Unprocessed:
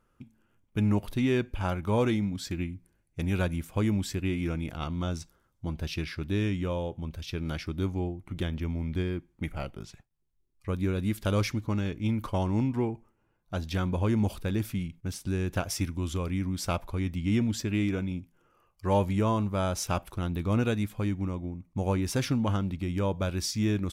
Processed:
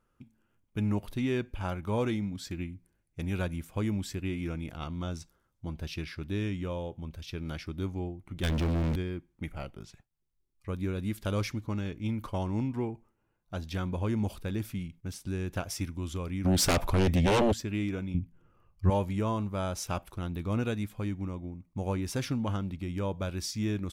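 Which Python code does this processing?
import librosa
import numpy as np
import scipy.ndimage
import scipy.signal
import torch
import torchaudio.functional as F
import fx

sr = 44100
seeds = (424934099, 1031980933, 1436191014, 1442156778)

y = fx.leveller(x, sr, passes=5, at=(8.43, 8.96))
y = fx.fold_sine(y, sr, drive_db=12, ceiling_db=-16.5, at=(16.44, 17.52), fade=0.02)
y = fx.bass_treble(y, sr, bass_db=14, treble_db=-7, at=(18.14, 18.9))
y = F.gain(torch.from_numpy(y), -4.0).numpy()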